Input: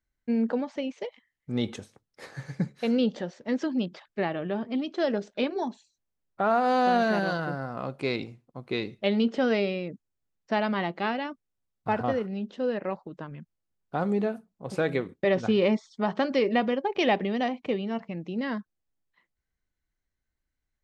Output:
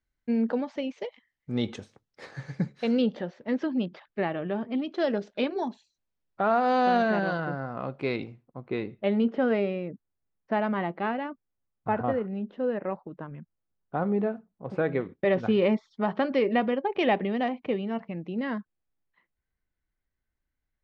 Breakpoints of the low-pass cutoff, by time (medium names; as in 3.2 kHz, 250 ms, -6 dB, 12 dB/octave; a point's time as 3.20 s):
5.7 kHz
from 3.02 s 3.2 kHz
from 4.94 s 4.8 kHz
from 7.02 s 3 kHz
from 8.44 s 1.9 kHz
from 15.00 s 2.9 kHz